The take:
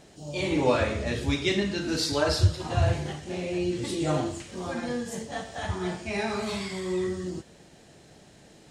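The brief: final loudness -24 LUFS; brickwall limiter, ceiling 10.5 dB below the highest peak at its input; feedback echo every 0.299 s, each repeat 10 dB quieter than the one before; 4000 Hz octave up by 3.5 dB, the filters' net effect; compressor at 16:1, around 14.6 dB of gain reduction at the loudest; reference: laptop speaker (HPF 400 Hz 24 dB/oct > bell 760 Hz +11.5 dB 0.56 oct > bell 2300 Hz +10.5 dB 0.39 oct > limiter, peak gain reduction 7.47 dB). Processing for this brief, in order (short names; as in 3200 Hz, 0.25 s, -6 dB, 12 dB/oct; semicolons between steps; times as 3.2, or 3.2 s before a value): bell 4000 Hz +3 dB; compressor 16:1, threshold -29 dBFS; limiter -30.5 dBFS; HPF 400 Hz 24 dB/oct; bell 760 Hz +11.5 dB 0.56 oct; bell 2300 Hz +10.5 dB 0.39 oct; feedback echo 0.299 s, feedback 32%, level -10 dB; gain +15 dB; limiter -15 dBFS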